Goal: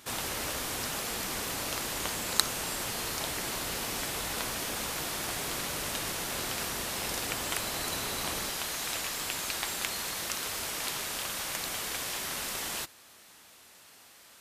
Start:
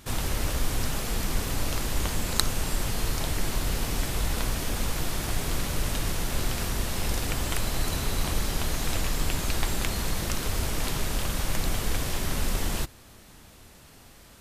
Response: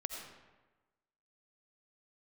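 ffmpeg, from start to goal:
-af "asetnsamples=n=441:p=0,asendcmd='8.5 highpass f 1000',highpass=f=490:p=1"

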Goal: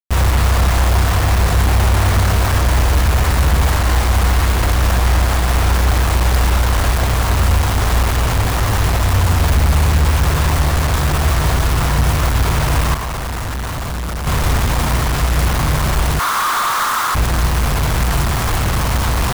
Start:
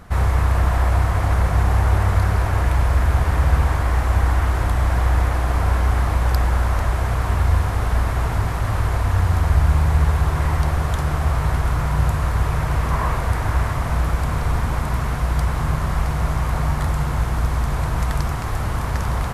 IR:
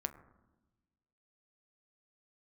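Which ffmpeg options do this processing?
-filter_complex "[0:a]asettb=1/sr,asplit=3[a][b][c];[a]atrim=end=16.194[d];[b]atrim=start=16.19:end=17.15,asetpts=PTS-STARTPTS,afade=t=in:d=0.004:c=qsin,afade=t=out:st=0.956:d=0.004:c=qsin,highpass=f=1.2k:t=q:w=3.5[e];[c]atrim=start=17.146[f];[d][e]acrossfade=d=0.004:c1=hsin:c2=qsin[g];[g][f]acrossfade=d=0.004:c1=qsin:c2=hsin,asoftclip=type=tanh:threshold=-19.5dB,acrusher=bits=4:mix=0:aa=0.000001,asettb=1/sr,asplit=3[h][i][j];[h]atrim=end=12.944[k];[i]atrim=start=12.94:end=14.27,asetpts=PTS-STARTPTS,afade=t=in:d=0.004:c=qsin,afade=t=out:st=1.326:d=0.004:c=qsin,volume=29.5dB,asoftclip=hard,volume=-29.5dB[l];[j]atrim=start=14.266[m];[k][l]acrossfade=d=0.004:c1=hsin:c2=qsin[n];[n][m]acrossfade=d=0.004:c1=qsin:c2=hsin,volume=9dB"

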